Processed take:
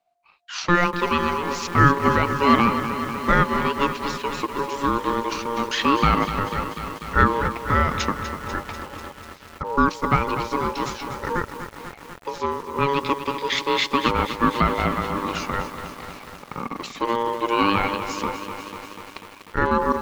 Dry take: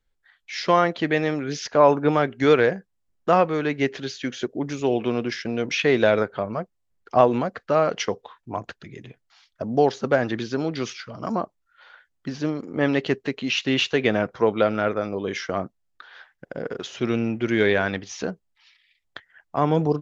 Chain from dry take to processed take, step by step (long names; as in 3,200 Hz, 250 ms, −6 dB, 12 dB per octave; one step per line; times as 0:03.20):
ring modulation 700 Hz
feedback echo at a low word length 246 ms, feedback 80%, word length 7 bits, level −10 dB
level +3 dB